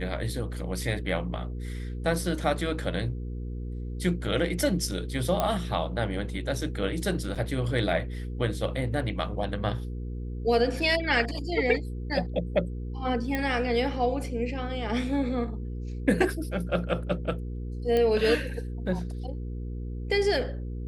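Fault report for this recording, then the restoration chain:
mains hum 60 Hz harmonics 8 −34 dBFS
0:05.40: click −12 dBFS
0:07.35–0:07.36: drop-out 6.5 ms
0:13.35: click −15 dBFS
0:17.97: click −15 dBFS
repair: click removal
hum removal 60 Hz, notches 8
repair the gap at 0:07.35, 6.5 ms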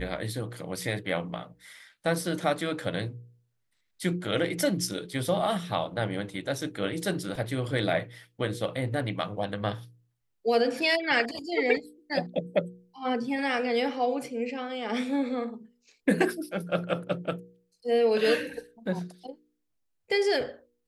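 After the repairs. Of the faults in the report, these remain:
none of them is left

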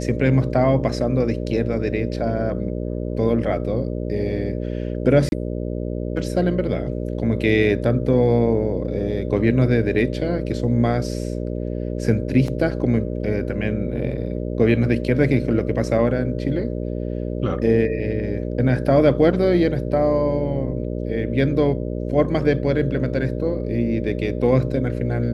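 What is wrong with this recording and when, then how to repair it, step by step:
mains buzz 60 Hz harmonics 10 −26 dBFS
0:05.29–0:05.32: drop-out 31 ms
0:12.48: drop-out 2.6 ms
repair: hum removal 60 Hz, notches 10
repair the gap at 0:05.29, 31 ms
repair the gap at 0:12.48, 2.6 ms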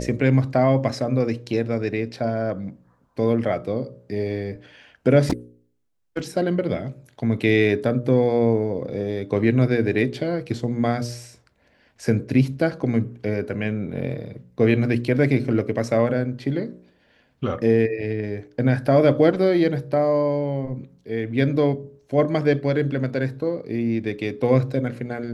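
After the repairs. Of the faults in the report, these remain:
none of them is left

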